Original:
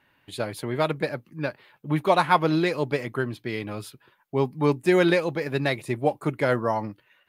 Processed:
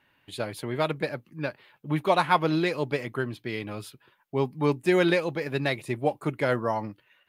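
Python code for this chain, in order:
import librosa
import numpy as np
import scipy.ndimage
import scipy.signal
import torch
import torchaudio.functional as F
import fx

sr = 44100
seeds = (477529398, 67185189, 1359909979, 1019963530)

y = fx.peak_eq(x, sr, hz=2900.0, db=2.5, octaves=0.77)
y = F.gain(torch.from_numpy(y), -2.5).numpy()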